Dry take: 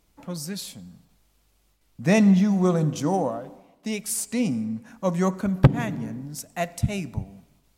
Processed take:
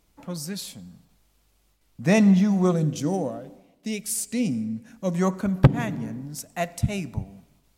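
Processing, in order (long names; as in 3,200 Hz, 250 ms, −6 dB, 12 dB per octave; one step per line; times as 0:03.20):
0:02.72–0:05.15: parametric band 1,000 Hz −10.5 dB 1.1 octaves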